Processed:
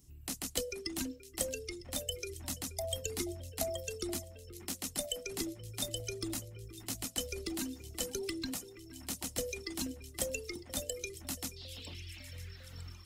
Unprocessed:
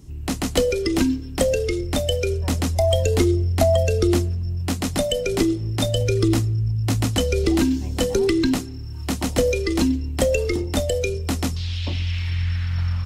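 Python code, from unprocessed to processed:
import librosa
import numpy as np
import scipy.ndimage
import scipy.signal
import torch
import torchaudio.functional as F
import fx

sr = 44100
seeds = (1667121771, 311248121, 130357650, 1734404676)

y = F.preemphasis(torch.from_numpy(x), 0.8).numpy()
y = fx.dereverb_blind(y, sr, rt60_s=1.9)
y = fx.echo_alternate(y, sr, ms=477, hz=2400.0, feedback_pct=74, wet_db=-14)
y = y * librosa.db_to_amplitude(-5.5)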